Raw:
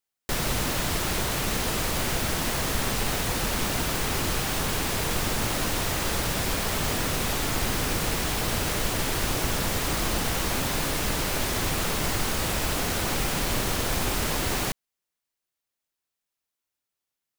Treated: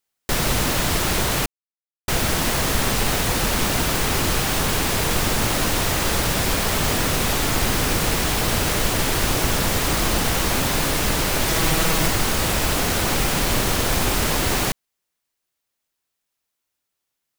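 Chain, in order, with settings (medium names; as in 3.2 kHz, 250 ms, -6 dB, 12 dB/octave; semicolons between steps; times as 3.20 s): 1.46–2.08 s: mute; 11.47–12.08 s: comb 6.2 ms, depth 61%; trim +6 dB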